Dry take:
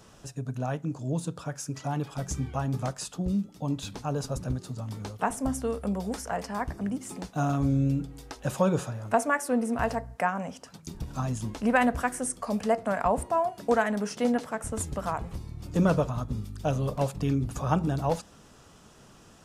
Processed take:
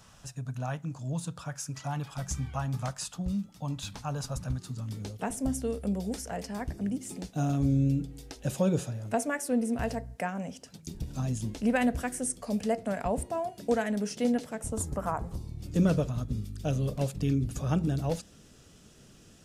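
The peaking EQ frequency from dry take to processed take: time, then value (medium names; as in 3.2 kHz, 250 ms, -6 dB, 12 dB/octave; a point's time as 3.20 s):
peaking EQ -12.5 dB 1.2 oct
4.48 s 370 Hz
5.03 s 1.1 kHz
14.57 s 1.1 kHz
15.04 s 4.4 kHz
15.68 s 970 Hz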